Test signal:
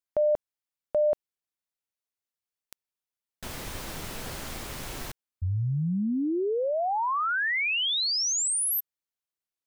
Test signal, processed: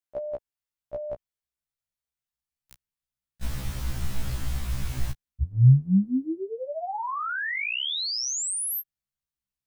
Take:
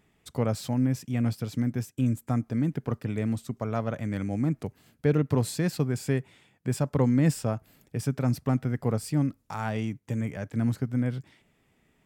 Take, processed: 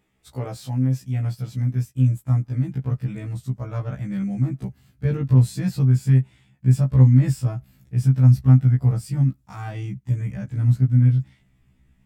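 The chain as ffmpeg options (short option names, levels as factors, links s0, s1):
-af "asubboost=boost=9:cutoff=140,afftfilt=real='re*1.73*eq(mod(b,3),0)':imag='im*1.73*eq(mod(b,3),0)':win_size=2048:overlap=0.75"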